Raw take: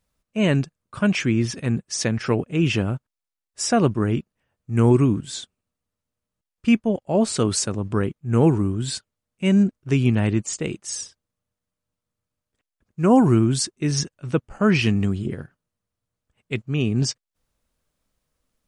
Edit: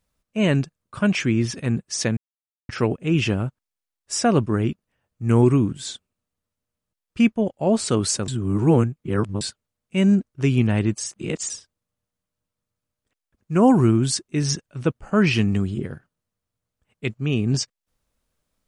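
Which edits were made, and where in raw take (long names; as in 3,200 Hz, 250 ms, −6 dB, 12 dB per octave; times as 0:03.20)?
0:02.17: splice in silence 0.52 s
0:07.76–0:08.89: reverse
0:10.46–0:10.98: reverse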